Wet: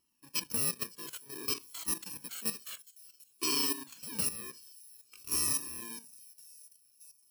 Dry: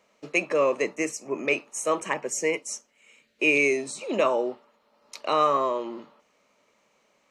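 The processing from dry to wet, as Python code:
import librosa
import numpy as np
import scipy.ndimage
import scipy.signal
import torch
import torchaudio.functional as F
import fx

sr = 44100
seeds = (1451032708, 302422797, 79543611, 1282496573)

y = fx.bit_reversed(x, sr, seeds[0], block=64)
y = fx.vibrato(y, sr, rate_hz=2.3, depth_cents=11.0)
y = fx.echo_wet_highpass(y, sr, ms=548, feedback_pct=61, hz=4800.0, wet_db=-18)
y = fx.level_steps(y, sr, step_db=12)
y = fx.comb_cascade(y, sr, direction='falling', hz=0.55)
y = F.gain(torch.from_numpy(y), -1.5).numpy()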